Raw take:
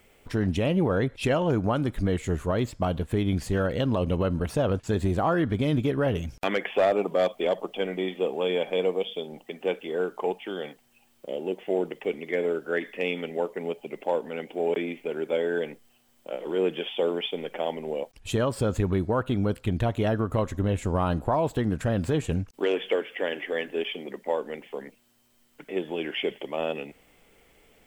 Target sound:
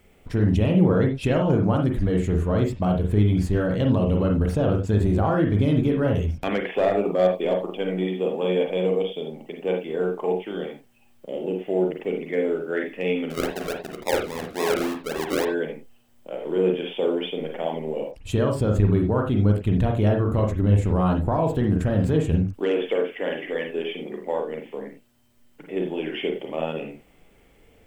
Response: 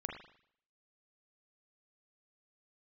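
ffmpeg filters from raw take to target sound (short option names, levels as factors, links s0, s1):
-filter_complex "[0:a]lowshelf=f=360:g=8,asettb=1/sr,asplit=3[s0][s1][s2];[s0]atrim=end=13.304[s3];[s1]atrim=start=13.3:end=15.45,asetpts=PTS-STARTPTS,afade=t=in:d=0.004:c=qsin,afade=t=out:st=2.146:d=0.004:c=qsin,acrusher=samples=41:mix=1:aa=0.000001:lfo=1:lforange=24.6:lforate=3.6[s4];[s2]atrim=start=15.446[s5];[s3][s4]acrossfade=d=0.004:c1=hsin:c2=qsin[s6];[s6][s5]acrossfade=d=0.004:c1=qsin:c2=hsin[s7];[1:a]atrim=start_sample=2205,atrim=end_sample=4410[s8];[s7][s8]afir=irnorm=-1:irlink=0"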